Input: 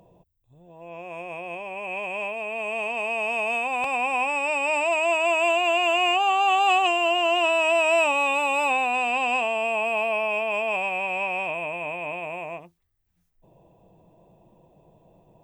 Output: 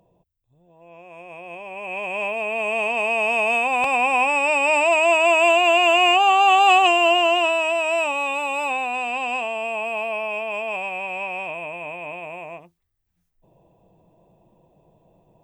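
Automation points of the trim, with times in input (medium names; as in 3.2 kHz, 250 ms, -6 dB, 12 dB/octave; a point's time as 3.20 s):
1.11 s -6 dB
2.36 s +5.5 dB
7.13 s +5.5 dB
7.76 s -1.5 dB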